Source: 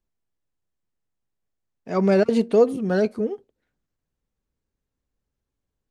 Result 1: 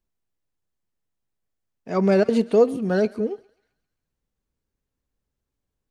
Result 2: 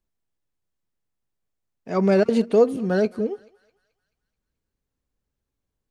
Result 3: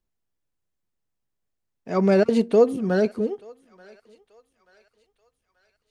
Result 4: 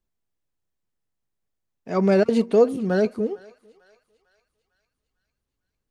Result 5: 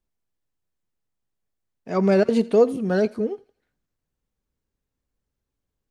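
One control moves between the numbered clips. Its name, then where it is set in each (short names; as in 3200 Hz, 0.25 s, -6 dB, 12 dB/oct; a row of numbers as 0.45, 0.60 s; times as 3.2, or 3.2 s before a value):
thinning echo, time: 133, 216, 883, 450, 84 ms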